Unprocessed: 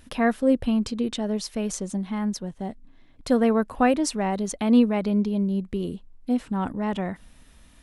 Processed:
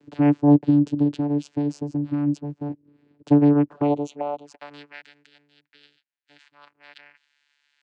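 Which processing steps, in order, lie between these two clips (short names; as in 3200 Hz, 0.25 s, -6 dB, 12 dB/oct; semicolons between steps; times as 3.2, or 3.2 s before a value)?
high-pass sweep 240 Hz -> 2500 Hz, 3.63–5.05; vocoder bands 8, saw 145 Hz; 3.68–4.54 envelope flanger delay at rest 9.2 ms, full sweep at -25.5 dBFS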